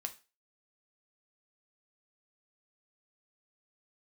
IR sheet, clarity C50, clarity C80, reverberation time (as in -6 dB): 15.5 dB, 22.0 dB, 0.30 s